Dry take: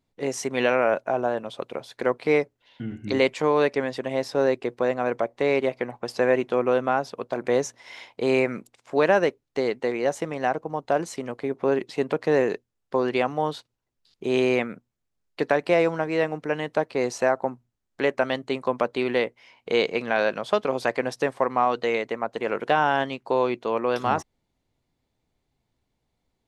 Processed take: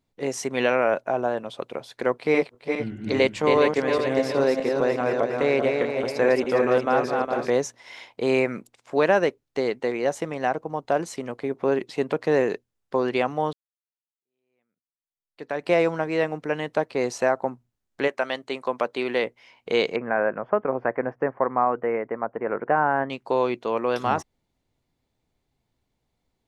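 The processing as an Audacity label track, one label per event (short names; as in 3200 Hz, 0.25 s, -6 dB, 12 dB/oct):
2.140000	7.500000	regenerating reverse delay 0.205 s, feedback 62%, level -4 dB
13.530000	15.700000	fade in exponential
18.070000	19.220000	HPF 660 Hz -> 230 Hz 6 dB/oct
19.960000	23.100000	inverse Chebyshev low-pass stop band from 3600 Hz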